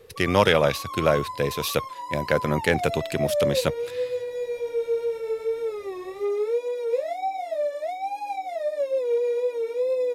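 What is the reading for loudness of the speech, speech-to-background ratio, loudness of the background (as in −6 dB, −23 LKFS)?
−24.0 LKFS, 4.5 dB, −28.5 LKFS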